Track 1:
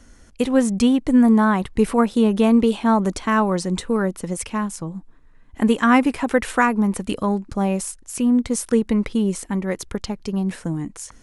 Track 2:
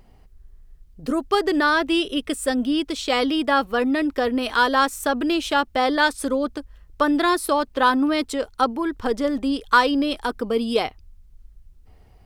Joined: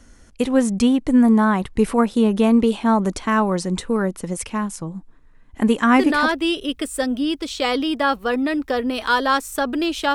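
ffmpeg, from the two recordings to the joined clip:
-filter_complex "[0:a]apad=whole_dur=10.14,atrim=end=10.14,atrim=end=6.32,asetpts=PTS-STARTPTS[a];[1:a]atrim=start=1.44:end=5.62,asetpts=PTS-STARTPTS[b];[a][b]acrossfade=d=0.36:c1=log:c2=log"

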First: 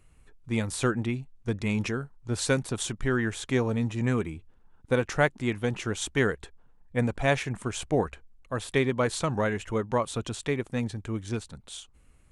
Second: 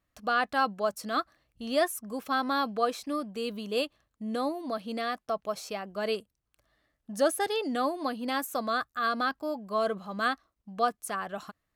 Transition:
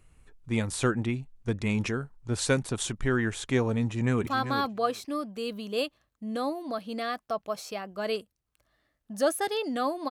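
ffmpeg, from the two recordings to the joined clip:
-filter_complex "[0:a]apad=whole_dur=10.1,atrim=end=10.1,atrim=end=4.272[a];[1:a]atrim=start=2.258:end=8.09[b];[a][b]acrossfade=d=0.004:c1=hsin:c2=hsin,asplit=2[c][d];[d]afade=t=in:st=3.84:d=0.01,afade=t=out:st=4.27:d=0.01,aecho=0:1:390|780:0.354813|0.0354813[e];[c][e]amix=inputs=2:normalize=0"

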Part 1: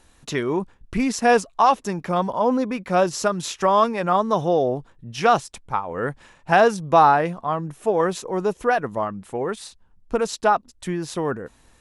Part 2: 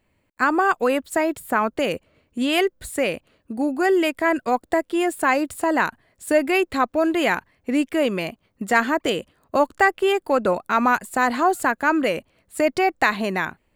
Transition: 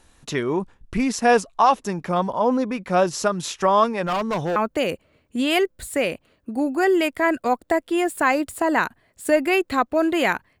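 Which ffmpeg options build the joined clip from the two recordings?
-filter_complex "[0:a]asettb=1/sr,asplit=3[a][b][c];[a]atrim=end=4.044[d];[b]atrim=start=4.04:end=4.56,asetpts=PTS-STARTPTS,afade=t=in:d=0.004:c=qsin,afade=t=out:st=0.516:d=0.004:c=qsin,asoftclip=type=hard:threshold=-20dB[e];[c]atrim=start=4.556[f];[d][e]acrossfade=d=0.004:c1=hsin:c2=qsin[g];[g][f]acrossfade=d=0.004:c1=qsin:c2=hsin,apad=whole_dur=10.6,atrim=end=10.6,atrim=end=4.562[h];[1:a]atrim=start=1.578:end=7.62[i];[h][i]acrossfade=d=0.004:c1=hsin:c2=hsin"

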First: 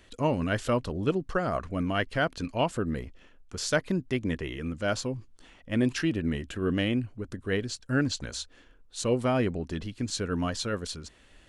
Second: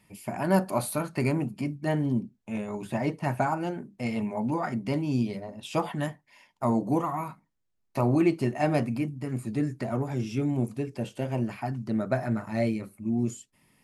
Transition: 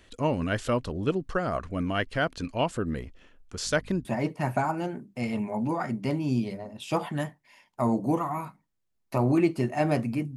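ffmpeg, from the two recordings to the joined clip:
-filter_complex "[0:a]asettb=1/sr,asplit=3[a][b][c];[a]atrim=end=3.654[d];[b]atrim=start=3.65:end=4.05,asetpts=PTS-STARTPTS,afade=t=in:d=0.004:c=qsin,afade=t=out:st=0.396:d=0.004:c=qsin,aeval=exprs='val(0)+0.00447*(sin(2*PI*50*n/s)+sin(2*PI*2*50*n/s)/2+sin(2*PI*3*50*n/s)/3+sin(2*PI*4*50*n/s)/4+sin(2*PI*5*50*n/s)/5)':c=same[e];[c]atrim=start=4.046[f];[d][e]acrossfade=d=0.004:c1=hsin:c2=qsin[g];[g][f]acrossfade=d=0.004:c1=qsin:c2=hsin,apad=whole_dur=10.36,atrim=end=10.36,atrim=end=4.052[h];[1:a]atrim=start=2.878:end=9.19[i];[h][i]acrossfade=d=0.004:c1=hsin:c2=hsin"

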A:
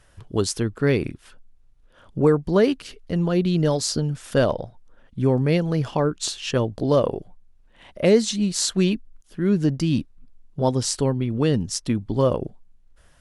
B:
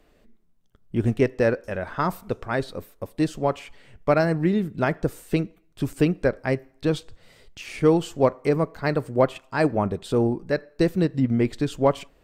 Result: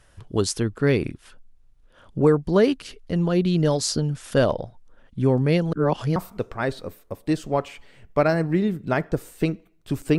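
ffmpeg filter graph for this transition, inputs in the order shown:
-filter_complex "[0:a]apad=whole_dur=10.18,atrim=end=10.18,asplit=2[a][b];[a]atrim=end=5.732[c];[b]atrim=start=5.728:end=6.162,asetpts=PTS-STARTPTS,areverse[d];[1:a]atrim=start=2.068:end=6.09[e];[c][d]acrossfade=d=0.004:c1=hsin:c2=hsin[f];[f][e]acrossfade=d=0.004:c1=hsin:c2=hsin"

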